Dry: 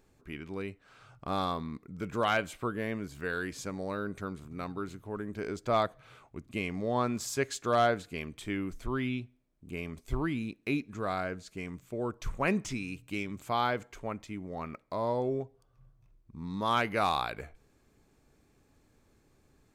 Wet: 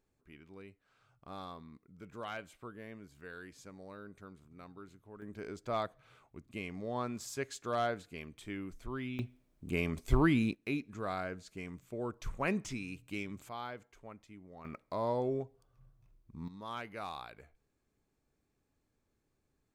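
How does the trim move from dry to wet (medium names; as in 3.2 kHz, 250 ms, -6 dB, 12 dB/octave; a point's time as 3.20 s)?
-14 dB
from 5.22 s -7.5 dB
from 9.19 s +5 dB
from 10.55 s -4.5 dB
from 13.49 s -13.5 dB
from 14.65 s -2.5 dB
from 16.48 s -14 dB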